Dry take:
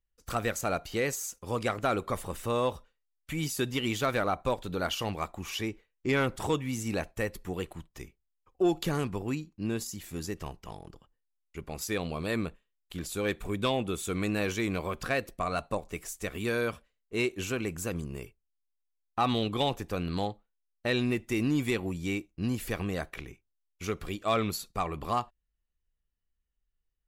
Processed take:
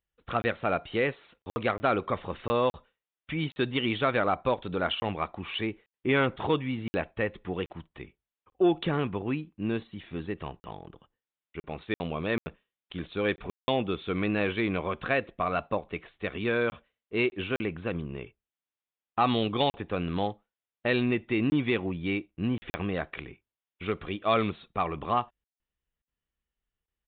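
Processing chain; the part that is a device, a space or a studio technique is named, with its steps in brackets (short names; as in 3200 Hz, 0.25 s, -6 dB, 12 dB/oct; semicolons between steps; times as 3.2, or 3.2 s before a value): call with lost packets (HPF 110 Hz 6 dB/oct; downsampling 8000 Hz; packet loss packets of 20 ms bursts); gain +3 dB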